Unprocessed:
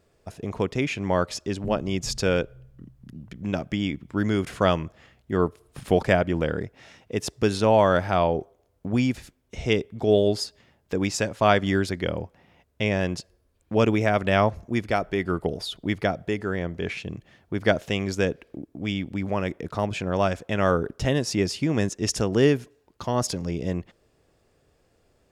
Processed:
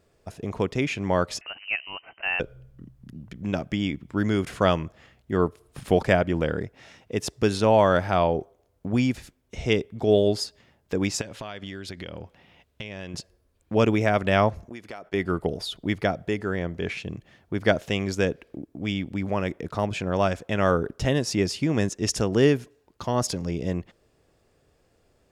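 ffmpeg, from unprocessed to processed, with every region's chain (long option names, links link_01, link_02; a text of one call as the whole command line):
ffmpeg -i in.wav -filter_complex "[0:a]asettb=1/sr,asplit=3[link_01][link_02][link_03];[link_01]atrim=end=1.414[link_04];[link_02]atrim=start=1.41:end=2.4,asetpts=PTS-STARTPTS,afade=type=in:duration=0.004:curve=qsin,afade=type=out:start_time=0.986:duration=0.004:curve=qsin,acompressor=mode=upward:threshold=-33dB:ratio=2.5:attack=3.2:release=140:knee=2.83:detection=peak,highpass=590,lowpass=frequency=2700:width_type=q:width=0.5098,lowpass=frequency=2700:width_type=q:width=0.6013,lowpass=frequency=2700:width_type=q:width=0.9,lowpass=frequency=2700:width_type=q:width=2.563,afreqshift=-3200[link_05];[link_03]atrim=start=2.396[link_06];[link_04][link_05]acrossfade=duration=0.004:curve1=hsin:curve2=qsin[link_07];[link_07][link_06]acrossfade=duration=0.004:curve1=qsin:curve2=hsin,asettb=1/sr,asplit=3[link_08][link_09][link_10];[link_08]atrim=end=11.214[link_11];[link_09]atrim=start=11.21:end=13.14,asetpts=PTS-STARTPTS,afade=type=in:duration=0.004:curve=qsin,afade=type=out:start_time=1.926:duration=0.004:curve=qsin,equalizer=frequency=3200:width_type=o:width=1.2:gain=7.5,acompressor=threshold=-32dB:ratio=12:attack=3.2:release=140:knee=1:detection=peak[link_12];[link_10]atrim=start=13.136[link_13];[link_11][link_12]acrossfade=duration=0.004:curve1=hsin:curve2=qsin[link_14];[link_14][link_13]acrossfade=duration=0.004:curve1=qsin:curve2=hsin,asettb=1/sr,asplit=3[link_15][link_16][link_17];[link_15]atrim=end=14.694[link_18];[link_16]atrim=start=14.69:end=15.14,asetpts=PTS-STARTPTS,afade=type=in:duration=0.004:curve=qsin,afade=type=out:start_time=0.446:duration=0.004:curve=qsin,agate=range=-33dB:threshold=-39dB:ratio=3:release=100:detection=peak,highpass=frequency=360:poles=1,acompressor=threshold=-35dB:ratio=6:attack=3.2:release=140:knee=1:detection=peak[link_19];[link_17]atrim=start=15.136[link_20];[link_18][link_19]acrossfade=duration=0.004:curve1=hsin:curve2=qsin[link_21];[link_21][link_20]acrossfade=duration=0.004:curve1=qsin:curve2=hsin" out.wav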